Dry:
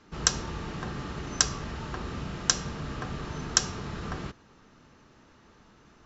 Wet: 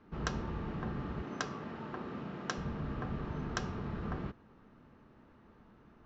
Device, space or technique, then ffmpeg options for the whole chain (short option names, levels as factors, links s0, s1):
phone in a pocket: -filter_complex "[0:a]asettb=1/sr,asplit=3[s0][s1][s2];[s0]atrim=end=1.224[s3];[s1]atrim=start=1.22:end=2.58,asetpts=PTS-STARTPTS,afade=t=in:d=0.004:c=qsin,afade=t=out:st=1.356:d=0.004:c=qsin,highpass=190[s4];[s2]atrim=start=2.576[s5];[s3][s4]acrossfade=d=0.004:c1=hsin:c2=qsin[s6];[s6][s5]acrossfade=d=0.004:c1=qsin:c2=hsin,lowpass=3500,equalizer=f=220:t=o:w=0.31:g=3.5,highshelf=f=2000:g=-11,volume=0.75"